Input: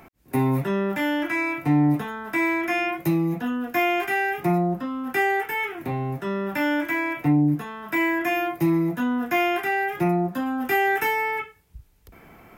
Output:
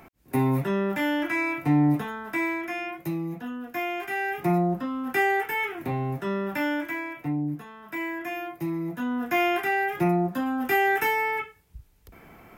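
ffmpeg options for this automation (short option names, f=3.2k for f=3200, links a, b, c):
-af "volume=13.5dB,afade=t=out:st=2.1:d=0.63:silence=0.473151,afade=t=in:st=4:d=0.58:silence=0.446684,afade=t=out:st=6.33:d=0.79:silence=0.398107,afade=t=in:st=8.77:d=0.69:silence=0.398107"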